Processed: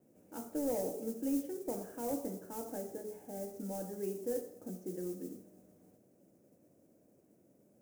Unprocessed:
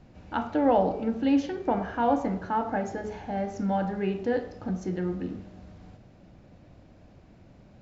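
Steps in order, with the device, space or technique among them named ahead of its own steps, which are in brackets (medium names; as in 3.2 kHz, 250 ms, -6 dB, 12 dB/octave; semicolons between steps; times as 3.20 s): carbon microphone (band-pass 310–2900 Hz; saturation -20 dBFS, distortion -15 dB; modulation noise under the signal 14 dB); high-order bell 1.8 kHz -15.5 dB 2.9 oct; trim -5.5 dB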